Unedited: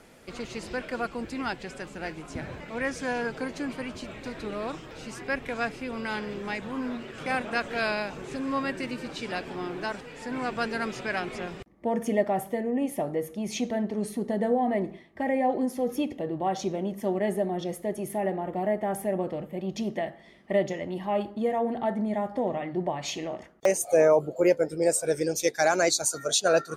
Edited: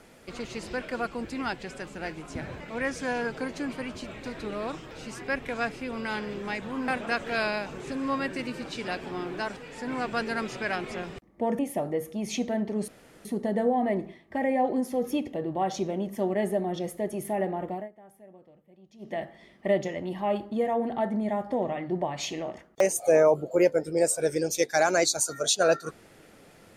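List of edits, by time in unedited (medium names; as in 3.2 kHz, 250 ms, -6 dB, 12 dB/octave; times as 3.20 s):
6.88–7.32 s: delete
12.03–12.81 s: delete
14.10 s: insert room tone 0.37 s
18.50–20.07 s: dip -23 dB, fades 0.24 s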